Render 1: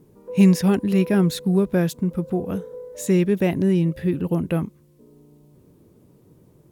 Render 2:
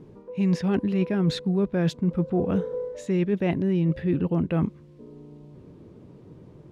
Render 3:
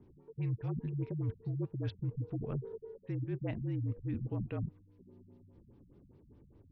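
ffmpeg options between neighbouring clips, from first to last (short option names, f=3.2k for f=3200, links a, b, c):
-af "areverse,acompressor=threshold=-26dB:ratio=12,areverse,lowpass=3.8k,volume=6dB"
-af "afreqshift=-50,flanger=delay=4.4:depth=3.8:regen=-88:speed=1.1:shape=triangular,afftfilt=real='re*lt(b*sr/1024,210*pow(6400/210,0.5+0.5*sin(2*PI*4.9*pts/sr)))':imag='im*lt(b*sr/1024,210*pow(6400/210,0.5+0.5*sin(2*PI*4.9*pts/sr)))':win_size=1024:overlap=0.75,volume=-8dB"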